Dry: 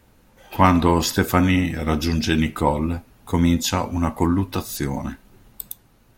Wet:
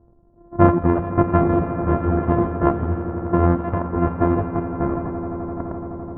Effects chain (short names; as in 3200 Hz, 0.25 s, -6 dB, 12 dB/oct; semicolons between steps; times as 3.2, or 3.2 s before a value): sample sorter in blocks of 128 samples; reverb removal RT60 1.1 s; on a send: swelling echo 85 ms, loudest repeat 8, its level -15 dB; on the sum: low-pass opened by the level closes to 640 Hz, open at -14 dBFS; LPF 1300 Hz 24 dB/oct; gain +3 dB